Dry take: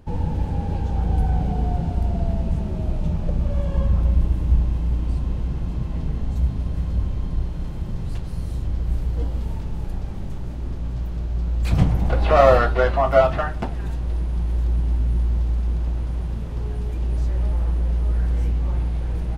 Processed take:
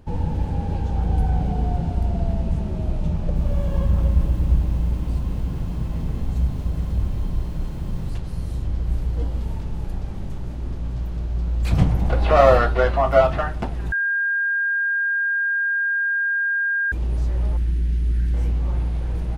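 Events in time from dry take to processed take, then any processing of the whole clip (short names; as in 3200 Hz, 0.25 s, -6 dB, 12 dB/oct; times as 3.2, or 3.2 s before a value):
3.13–8.1 lo-fi delay 0.227 s, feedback 55%, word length 8-bit, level -8.5 dB
13.92–16.92 bleep 1610 Hz -18.5 dBFS
17.57–18.34 band shelf 760 Hz -15 dB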